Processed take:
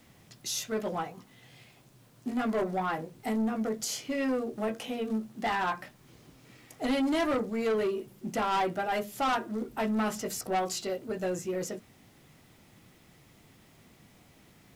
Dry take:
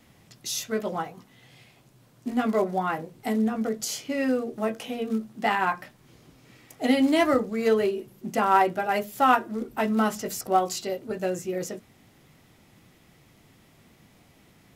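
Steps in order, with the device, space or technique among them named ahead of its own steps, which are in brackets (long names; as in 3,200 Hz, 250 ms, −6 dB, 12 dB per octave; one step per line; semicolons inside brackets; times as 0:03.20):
compact cassette (soft clipping −22.5 dBFS, distortion −9 dB; low-pass filter 13,000 Hz 12 dB per octave; tape wow and flutter 16 cents; white noise bed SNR 37 dB)
level −1.5 dB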